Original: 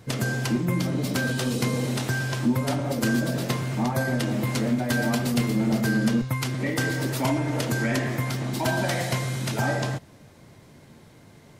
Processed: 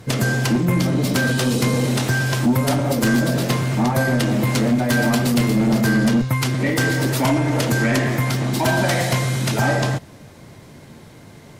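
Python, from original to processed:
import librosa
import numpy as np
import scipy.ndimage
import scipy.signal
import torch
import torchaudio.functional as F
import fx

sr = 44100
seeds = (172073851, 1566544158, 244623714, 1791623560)

y = fx.fold_sine(x, sr, drive_db=4, ceiling_db=-12.0)
y = fx.high_shelf(y, sr, hz=12000.0, db=8.0, at=(2.26, 2.96))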